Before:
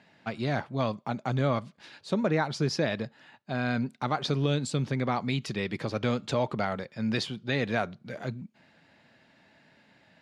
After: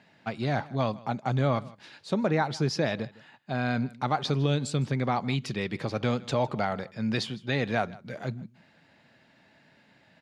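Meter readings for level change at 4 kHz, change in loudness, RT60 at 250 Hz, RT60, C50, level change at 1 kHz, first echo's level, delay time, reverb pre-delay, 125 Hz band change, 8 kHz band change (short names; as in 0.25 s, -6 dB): 0.0 dB, +1.0 dB, none, none, none, +2.0 dB, -21.5 dB, 0.157 s, none, +1.5 dB, 0.0 dB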